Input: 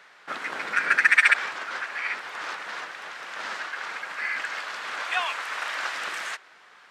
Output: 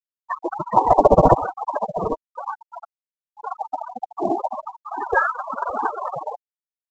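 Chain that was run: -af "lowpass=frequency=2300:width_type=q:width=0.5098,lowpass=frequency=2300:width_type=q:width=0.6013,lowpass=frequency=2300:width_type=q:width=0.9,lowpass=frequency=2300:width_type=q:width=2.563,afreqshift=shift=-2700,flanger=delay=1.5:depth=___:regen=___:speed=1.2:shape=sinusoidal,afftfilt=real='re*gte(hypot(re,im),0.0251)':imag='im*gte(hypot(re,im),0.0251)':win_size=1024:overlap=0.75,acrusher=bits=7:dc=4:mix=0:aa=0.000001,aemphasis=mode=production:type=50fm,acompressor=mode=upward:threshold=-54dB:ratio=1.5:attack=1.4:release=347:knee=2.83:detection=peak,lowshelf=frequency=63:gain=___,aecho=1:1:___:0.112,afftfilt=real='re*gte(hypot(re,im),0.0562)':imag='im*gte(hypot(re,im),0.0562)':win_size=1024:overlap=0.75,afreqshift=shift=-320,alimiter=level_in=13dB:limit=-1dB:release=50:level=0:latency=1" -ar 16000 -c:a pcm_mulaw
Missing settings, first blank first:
4.9, -24, -10.5, 704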